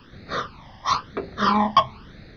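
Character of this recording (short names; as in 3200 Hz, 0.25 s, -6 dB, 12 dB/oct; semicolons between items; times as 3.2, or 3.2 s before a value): phasing stages 12, 1 Hz, lowest notch 420–1000 Hz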